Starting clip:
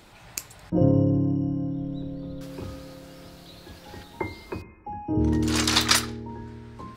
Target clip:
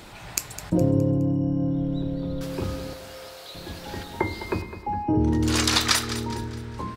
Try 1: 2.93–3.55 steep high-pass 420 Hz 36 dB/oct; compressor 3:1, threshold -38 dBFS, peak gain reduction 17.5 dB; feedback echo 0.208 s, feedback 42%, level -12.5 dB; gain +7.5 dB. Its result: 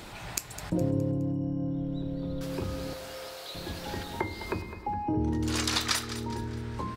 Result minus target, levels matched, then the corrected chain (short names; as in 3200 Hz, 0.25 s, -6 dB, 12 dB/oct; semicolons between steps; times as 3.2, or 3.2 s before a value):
compressor: peak gain reduction +7 dB
2.93–3.55 steep high-pass 420 Hz 36 dB/oct; compressor 3:1, threshold -27.5 dBFS, peak gain reduction 10.5 dB; feedback echo 0.208 s, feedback 42%, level -12.5 dB; gain +7.5 dB